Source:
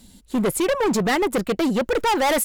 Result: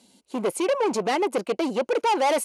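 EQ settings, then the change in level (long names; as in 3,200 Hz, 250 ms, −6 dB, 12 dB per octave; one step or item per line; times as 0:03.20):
loudspeaker in its box 370–9,300 Hz, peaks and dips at 1,300 Hz −5 dB, 1,800 Hz −10 dB, 3,600 Hz −7 dB, 5,200 Hz −4 dB, 7,600 Hz −9 dB
0.0 dB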